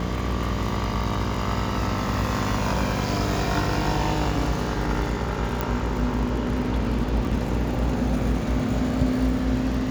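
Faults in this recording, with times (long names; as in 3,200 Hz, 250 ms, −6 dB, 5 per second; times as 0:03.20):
mains buzz 60 Hz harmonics 10 −29 dBFS
surface crackle 49 per second −30 dBFS
0:05.61: click −11 dBFS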